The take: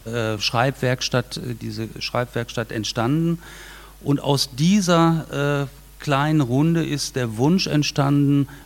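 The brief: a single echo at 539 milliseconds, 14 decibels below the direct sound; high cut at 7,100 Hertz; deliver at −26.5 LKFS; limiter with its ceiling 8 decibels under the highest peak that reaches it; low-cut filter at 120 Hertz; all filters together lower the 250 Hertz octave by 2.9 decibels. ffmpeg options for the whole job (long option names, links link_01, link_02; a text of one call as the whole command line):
ffmpeg -i in.wav -af "highpass=120,lowpass=7100,equalizer=frequency=250:width_type=o:gain=-3.5,alimiter=limit=-11.5dB:level=0:latency=1,aecho=1:1:539:0.2,volume=-2dB" out.wav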